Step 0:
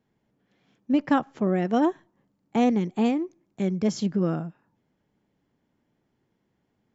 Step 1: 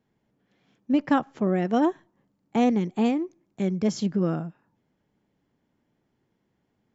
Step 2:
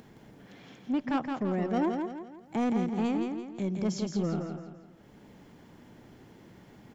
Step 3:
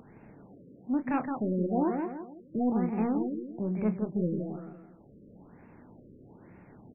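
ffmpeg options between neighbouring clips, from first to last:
ffmpeg -i in.wav -af anull out.wav
ffmpeg -i in.wav -filter_complex "[0:a]acompressor=mode=upward:threshold=-30dB:ratio=2.5,asoftclip=type=tanh:threshold=-18dB,asplit=2[link_01][link_02];[link_02]aecho=0:1:168|336|504|672|840:0.562|0.231|0.0945|0.0388|0.0159[link_03];[link_01][link_03]amix=inputs=2:normalize=0,volume=-4.5dB" out.wav
ffmpeg -i in.wav -filter_complex "[0:a]asplit=2[link_01][link_02];[link_02]adelay=28,volume=-9.5dB[link_03];[link_01][link_03]amix=inputs=2:normalize=0,afftfilt=real='re*lt(b*sr/1024,570*pow(2800/570,0.5+0.5*sin(2*PI*1.1*pts/sr)))':imag='im*lt(b*sr/1024,570*pow(2800/570,0.5+0.5*sin(2*PI*1.1*pts/sr)))':win_size=1024:overlap=0.75" out.wav

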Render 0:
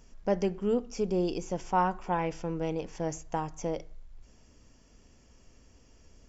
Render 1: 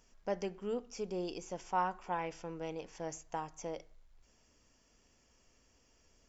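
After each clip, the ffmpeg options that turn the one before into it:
ffmpeg -i in.wav -af "lowshelf=frequency=380:gain=-10,volume=-4.5dB" out.wav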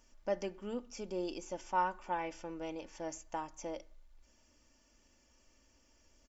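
ffmpeg -i in.wav -af "aecho=1:1:3.4:0.54,volume=-1dB" out.wav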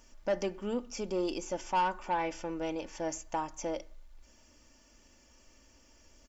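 ffmpeg -i in.wav -af "asoftclip=type=tanh:threshold=-29.5dB,volume=7dB" out.wav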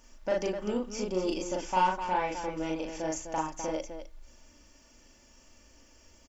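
ffmpeg -i in.wav -af "aecho=1:1:37.9|253.6:0.891|0.398" out.wav

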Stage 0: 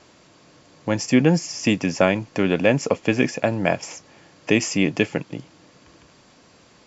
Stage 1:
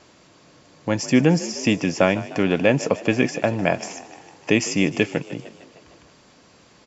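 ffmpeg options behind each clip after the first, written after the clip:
ffmpeg -i in.wav -filter_complex "[0:a]asplit=7[link_01][link_02][link_03][link_04][link_05][link_06][link_07];[link_02]adelay=152,afreqshift=45,volume=-17dB[link_08];[link_03]adelay=304,afreqshift=90,volume=-21.3dB[link_09];[link_04]adelay=456,afreqshift=135,volume=-25.6dB[link_10];[link_05]adelay=608,afreqshift=180,volume=-29.9dB[link_11];[link_06]adelay=760,afreqshift=225,volume=-34.2dB[link_12];[link_07]adelay=912,afreqshift=270,volume=-38.5dB[link_13];[link_01][link_08][link_09][link_10][link_11][link_12][link_13]amix=inputs=7:normalize=0" out.wav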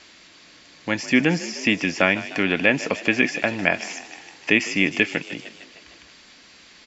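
ffmpeg -i in.wav -filter_complex "[0:a]equalizer=frequency=125:width_type=o:width=1:gain=-12,equalizer=frequency=500:width_type=o:width=1:gain=-6,equalizer=frequency=1000:width_type=o:width=1:gain=-4,equalizer=frequency=2000:width_type=o:width=1:gain=7,equalizer=frequency=4000:width_type=o:width=1:gain=7,acrossover=split=2800[link_01][link_02];[link_02]acompressor=threshold=-34dB:ratio=4:attack=1:release=60[link_03];[link_01][link_03]amix=inputs=2:normalize=0,volume=1.5dB" out.wav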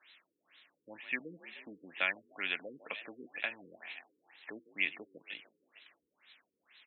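ffmpeg -i in.wav -af "aderivative,afftfilt=real='re*lt(b*sr/1024,480*pow(4200/480,0.5+0.5*sin(2*PI*2.1*pts/sr)))':imag='im*lt(b*sr/1024,480*pow(4200/480,0.5+0.5*sin(2*PI*2.1*pts/sr)))':win_size=1024:overlap=0.75" out.wav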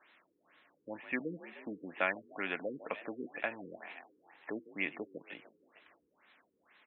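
ffmpeg -i in.wav -af "lowpass=1200,volume=8dB" out.wav

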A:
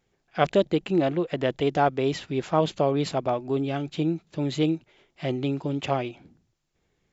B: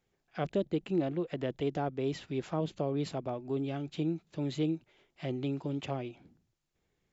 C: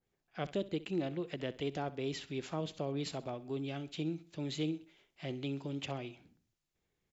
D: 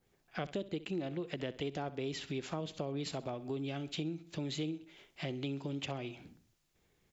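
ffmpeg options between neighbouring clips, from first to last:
ffmpeg -i in.wav -filter_complex "[0:a]acrossover=split=450[link_01][link_02];[link_02]acompressor=threshold=-37dB:ratio=2[link_03];[link_01][link_03]amix=inputs=2:normalize=0,volume=-6.5dB" out.wav
ffmpeg -i in.wav -af "aecho=1:1:65|130|195:0.133|0.0533|0.0213,adynamicequalizer=threshold=0.00224:dfrequency=1700:dqfactor=0.7:tfrequency=1700:tqfactor=0.7:attack=5:release=100:ratio=0.375:range=4:mode=boostabove:tftype=highshelf,volume=-5dB" out.wav
ffmpeg -i in.wav -af "acompressor=threshold=-48dB:ratio=3,volume=9.5dB" out.wav

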